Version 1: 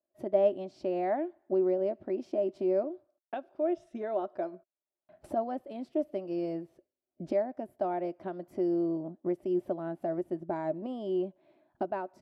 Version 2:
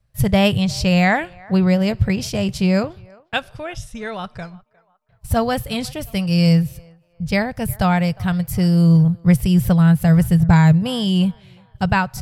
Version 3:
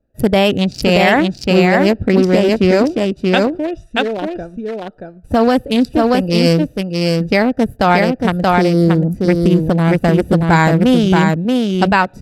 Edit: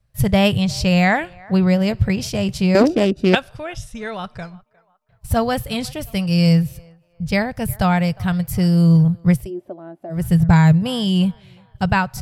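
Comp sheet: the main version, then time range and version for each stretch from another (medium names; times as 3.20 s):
2
2.75–3.35 s: from 3
9.39–10.21 s: from 1, crossfade 0.24 s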